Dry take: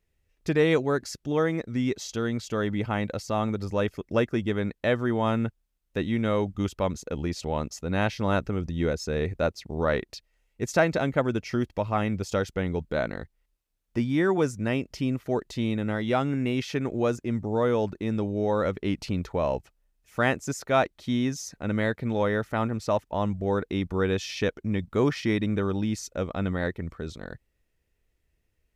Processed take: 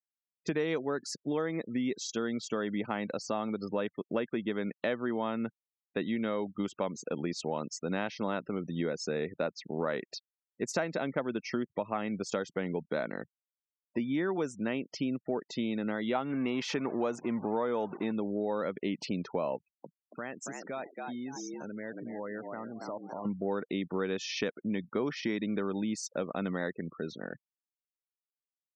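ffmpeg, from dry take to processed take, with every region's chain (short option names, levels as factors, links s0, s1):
-filter_complex "[0:a]asettb=1/sr,asplit=3[s0][s1][s2];[s0]atrim=end=16.154[s3];[s1]atrim=start=16.15:end=18.12,asetpts=PTS-STARTPTS,afade=t=in:d=0.004:c=qsin,afade=t=out:st=1.966:d=0.004:c=qsin,aeval=exprs='val(0)+0.5*0.0141*sgn(val(0))':c=same,equalizer=f=910:t=o:w=1:g=6.5[s4];[s2]atrim=start=18.116[s5];[s3][s4]acrossfade=d=0.004:c1=hsin:c2=qsin[s6];[s6][s5]acrossfade=d=0.004:c1=qsin:c2=hsin,asettb=1/sr,asplit=3[s7][s8][s9];[s7]atrim=end=19.564[s10];[s8]atrim=start=19.56:end=23.25,asetpts=PTS-STARTPTS,afade=t=in:d=0.004:c=qsin,afade=t=out:st=3.686:d=0.004:c=qsin,asplit=5[s11][s12][s13][s14][s15];[s12]adelay=279,afreqshift=86,volume=0.316[s16];[s13]adelay=558,afreqshift=172,volume=0.114[s17];[s14]adelay=837,afreqshift=258,volume=0.0412[s18];[s15]adelay=1116,afreqshift=344,volume=0.0148[s19];[s11][s16][s17][s18][s19]amix=inputs=5:normalize=0,atrim=end_sample=162729,acompressor=threshold=0.0141:ratio=4:attack=3.2:release=140:knee=1:detection=peak[s20];[s9]atrim=start=23.246[s21];[s10][s20]acrossfade=d=0.004:c1=hsin:c2=qsin[s22];[s22][s21]acrossfade=d=0.004:c1=qsin:c2=hsin,afftfilt=real='re*gte(hypot(re,im),0.00794)':imag='im*gte(hypot(re,im),0.00794)':win_size=1024:overlap=0.75,highpass=f=170:w=0.5412,highpass=f=170:w=1.3066,acompressor=threshold=0.0355:ratio=4"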